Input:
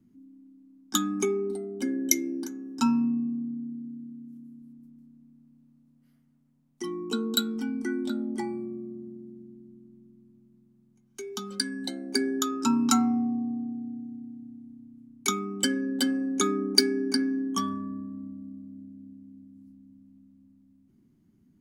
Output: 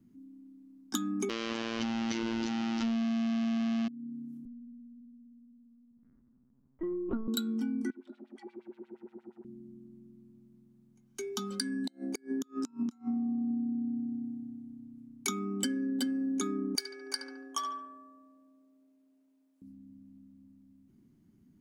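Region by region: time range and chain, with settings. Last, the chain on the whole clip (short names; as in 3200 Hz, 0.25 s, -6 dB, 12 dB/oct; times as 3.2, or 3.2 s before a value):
1.29–3.88 delta modulation 32 kbps, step -13.5 dBFS + bell 2900 Hz +6.5 dB 0.32 oct + robotiser 114 Hz
4.45–7.28 LPF 1600 Hz 24 dB/oct + LPC vocoder at 8 kHz pitch kept
7.9–9.45 G.711 law mismatch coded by mu + compressor 12:1, threshold -36 dBFS + LFO band-pass sine 8.5 Hz 340–3800 Hz
11.7–13.49 compressor 3:1, threshold -30 dBFS + flipped gate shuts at -23 dBFS, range -31 dB
16.75–19.62 inverse Chebyshev high-pass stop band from 190 Hz, stop band 50 dB + darkening echo 71 ms, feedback 47%, low-pass 2200 Hz, level -6 dB
whole clip: dynamic EQ 240 Hz, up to +8 dB, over -42 dBFS, Q 2.2; compressor 5:1, threshold -31 dBFS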